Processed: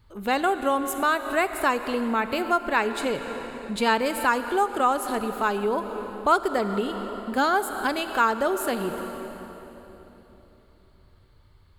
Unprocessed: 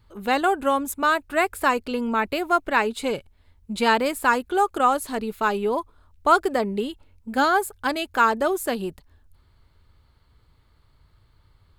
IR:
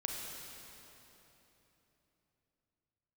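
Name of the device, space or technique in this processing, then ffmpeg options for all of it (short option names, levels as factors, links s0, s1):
ducked reverb: -filter_complex "[0:a]asplit=3[s0][s1][s2];[1:a]atrim=start_sample=2205[s3];[s1][s3]afir=irnorm=-1:irlink=0[s4];[s2]apad=whole_len=519552[s5];[s4][s5]sidechaincompress=threshold=0.0398:ratio=3:attack=29:release=238,volume=0.841[s6];[s0][s6]amix=inputs=2:normalize=0,volume=0.596"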